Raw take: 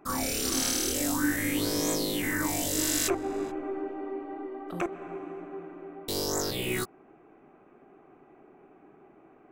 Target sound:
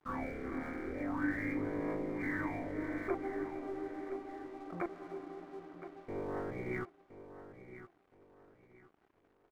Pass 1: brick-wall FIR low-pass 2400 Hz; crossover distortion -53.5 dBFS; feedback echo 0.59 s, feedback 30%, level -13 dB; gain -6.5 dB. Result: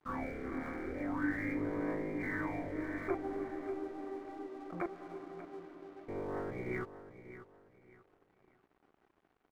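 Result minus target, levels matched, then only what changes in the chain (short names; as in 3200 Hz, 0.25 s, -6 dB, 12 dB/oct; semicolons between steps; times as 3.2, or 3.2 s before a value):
echo 0.428 s early
change: feedback echo 1.018 s, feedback 30%, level -13 dB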